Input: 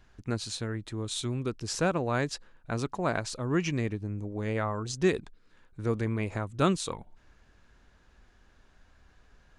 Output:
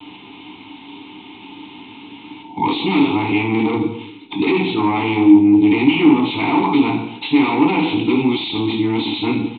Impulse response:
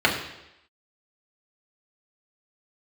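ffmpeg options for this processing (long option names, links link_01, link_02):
-filter_complex "[0:a]areverse,asplit=2[link_01][link_02];[link_02]acompressor=threshold=-41dB:ratio=6,volume=-3dB[link_03];[link_01][link_03]amix=inputs=2:normalize=0,aexciter=amount=4.9:drive=9.4:freq=3100[link_04];[1:a]atrim=start_sample=2205,asetrate=61740,aresample=44100[link_05];[link_04][link_05]afir=irnorm=-1:irlink=0,aresample=8000,asoftclip=type=tanh:threshold=-11dB,aresample=44100,apsyclip=20dB,asplit=3[link_06][link_07][link_08];[link_06]bandpass=frequency=300:width_type=q:width=8,volume=0dB[link_09];[link_07]bandpass=frequency=870:width_type=q:width=8,volume=-6dB[link_10];[link_08]bandpass=frequency=2240:width_type=q:width=8,volume=-9dB[link_11];[link_09][link_10][link_11]amix=inputs=3:normalize=0"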